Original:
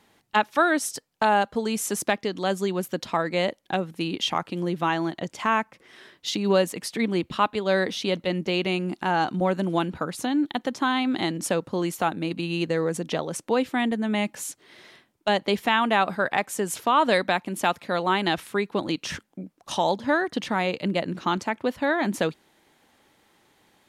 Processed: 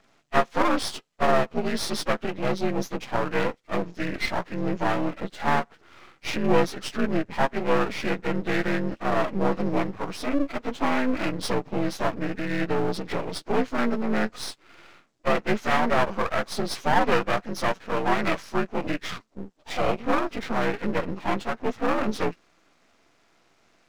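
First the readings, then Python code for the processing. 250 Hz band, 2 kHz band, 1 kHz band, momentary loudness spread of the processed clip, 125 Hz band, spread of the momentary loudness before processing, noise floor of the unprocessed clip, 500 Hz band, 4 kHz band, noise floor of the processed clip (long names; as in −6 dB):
−1.0 dB, −1.5 dB, −2.0 dB, 8 LU, 0.0 dB, 8 LU, −66 dBFS, −0.5 dB, −4.5 dB, −63 dBFS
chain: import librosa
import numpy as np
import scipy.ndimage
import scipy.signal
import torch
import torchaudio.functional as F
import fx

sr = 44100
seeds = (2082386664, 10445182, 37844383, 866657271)

y = fx.partial_stretch(x, sr, pct=83)
y = np.maximum(y, 0.0)
y = F.gain(torch.from_numpy(y), 5.0).numpy()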